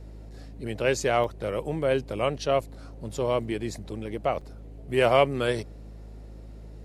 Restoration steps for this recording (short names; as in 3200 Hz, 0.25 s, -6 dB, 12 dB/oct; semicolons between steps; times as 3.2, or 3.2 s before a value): de-hum 53 Hz, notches 4; interpolate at 1.24/2.61/4.41, 4.3 ms